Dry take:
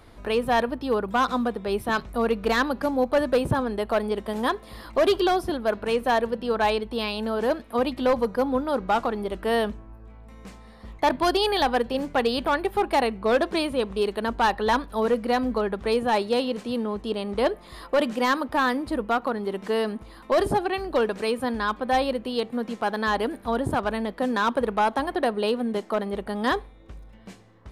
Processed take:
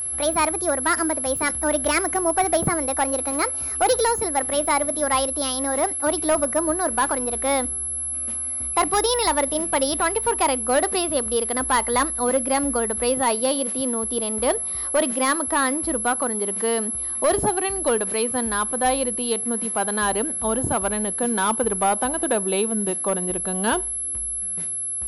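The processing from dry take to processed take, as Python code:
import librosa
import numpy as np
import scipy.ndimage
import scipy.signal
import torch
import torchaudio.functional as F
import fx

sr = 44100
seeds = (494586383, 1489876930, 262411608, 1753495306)

y = fx.speed_glide(x, sr, from_pct=134, to_pct=87)
y = y + 10.0 ** (-26.0 / 20.0) * np.sin(2.0 * np.pi * 11000.0 * np.arange(len(y)) / sr)
y = y * 10.0 ** (1.0 / 20.0)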